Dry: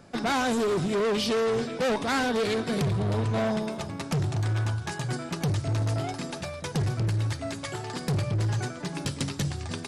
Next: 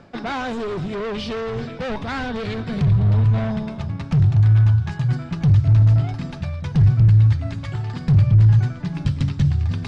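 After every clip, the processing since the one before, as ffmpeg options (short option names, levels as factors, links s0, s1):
-af "lowpass=3800,asubboost=boost=9.5:cutoff=130,areverse,acompressor=mode=upward:threshold=0.0562:ratio=2.5,areverse"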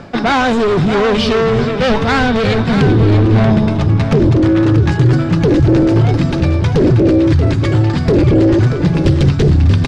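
-af "aeval=exprs='0.473*sin(PI/2*3.16*val(0)/0.473)':c=same,aecho=1:1:633:0.376"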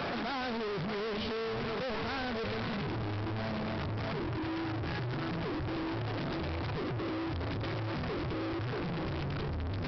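-filter_complex "[0:a]asoftclip=type=tanh:threshold=0.0944,asplit=2[s0][s1];[s1]highpass=f=720:p=1,volume=31.6,asoftclip=type=tanh:threshold=0.0944[s2];[s0][s2]amix=inputs=2:normalize=0,lowpass=f=1400:p=1,volume=0.501,aresample=11025,volume=53.1,asoftclip=hard,volume=0.0188,aresample=44100"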